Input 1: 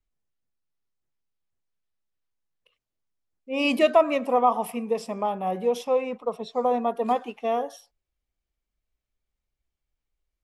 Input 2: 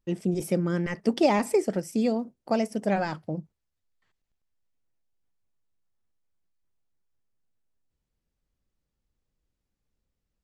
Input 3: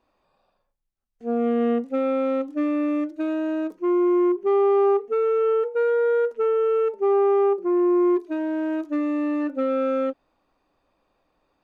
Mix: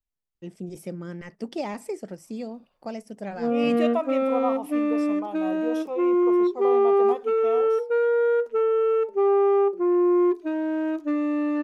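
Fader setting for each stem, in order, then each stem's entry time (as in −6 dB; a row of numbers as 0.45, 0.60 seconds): −8.5, −9.0, −0.5 decibels; 0.00, 0.35, 2.15 seconds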